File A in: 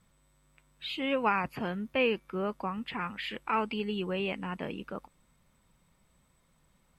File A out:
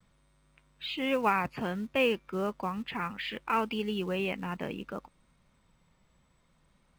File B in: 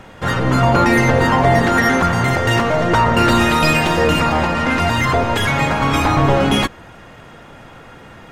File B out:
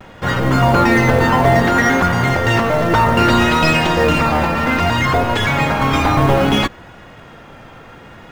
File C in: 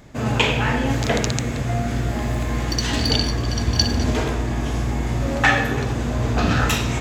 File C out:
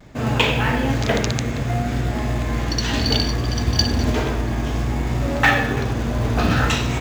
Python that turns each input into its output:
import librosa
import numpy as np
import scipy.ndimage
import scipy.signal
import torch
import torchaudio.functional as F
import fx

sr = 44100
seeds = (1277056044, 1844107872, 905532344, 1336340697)

p1 = scipy.signal.sosfilt(scipy.signal.butter(2, 6500.0, 'lowpass', fs=sr, output='sos'), x)
p2 = fx.vibrato(p1, sr, rate_hz=0.62, depth_cents=35.0)
p3 = fx.quant_float(p2, sr, bits=2)
p4 = p2 + (p3 * librosa.db_to_amplitude(-4.0))
y = p4 * librosa.db_to_amplitude(-3.5)